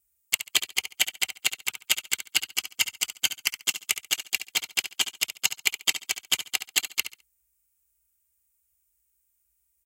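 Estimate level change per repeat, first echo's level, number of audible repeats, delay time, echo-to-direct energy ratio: -13.0 dB, -11.0 dB, 2, 69 ms, -11.0 dB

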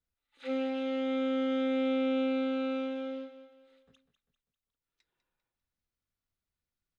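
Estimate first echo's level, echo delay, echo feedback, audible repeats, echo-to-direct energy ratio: -12.0 dB, 0.198 s, 44%, 4, -11.0 dB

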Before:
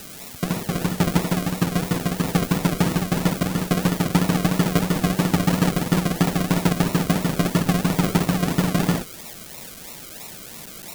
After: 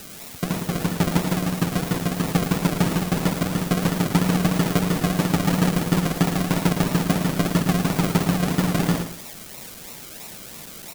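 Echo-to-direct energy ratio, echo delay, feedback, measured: -8.5 dB, 0.111 s, 25%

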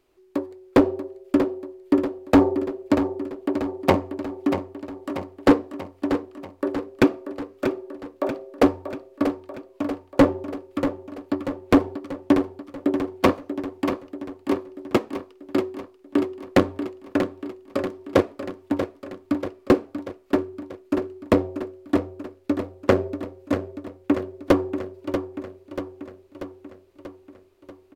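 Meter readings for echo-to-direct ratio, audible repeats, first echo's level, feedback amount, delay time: -7.0 dB, 6, -9.0 dB, 59%, 0.637 s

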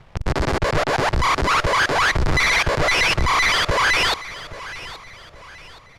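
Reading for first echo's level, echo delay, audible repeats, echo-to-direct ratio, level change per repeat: -16.0 dB, 0.823 s, 3, -15.5 dB, -8.5 dB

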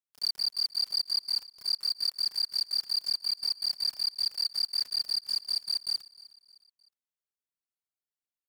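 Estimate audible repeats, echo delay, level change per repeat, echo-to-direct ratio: 3, 0.308 s, -7.0 dB, -19.5 dB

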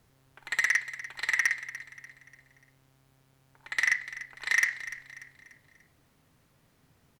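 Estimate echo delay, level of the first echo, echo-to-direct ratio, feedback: 0.293 s, -15.0 dB, -14.0 dB, 42%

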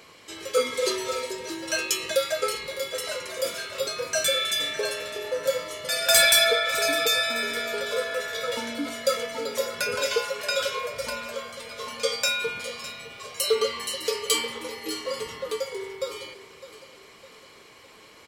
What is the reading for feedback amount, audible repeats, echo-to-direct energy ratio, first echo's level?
48%, 4, -14.5 dB, -15.5 dB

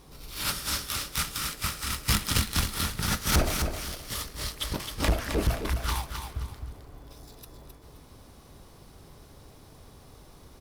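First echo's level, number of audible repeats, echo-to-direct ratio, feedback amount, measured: -6.5 dB, 3, -6.0 dB, 29%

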